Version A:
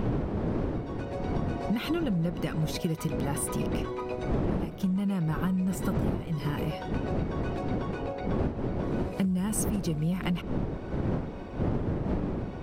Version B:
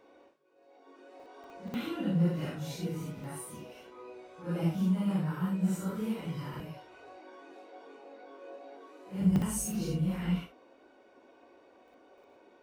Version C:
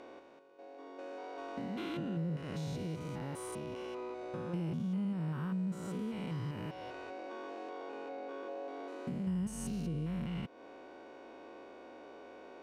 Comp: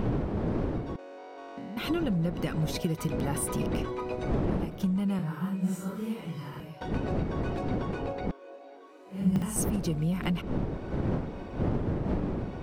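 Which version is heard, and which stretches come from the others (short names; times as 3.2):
A
0.96–1.77 from C
5.19–6.81 from B
8.31–9.56 from B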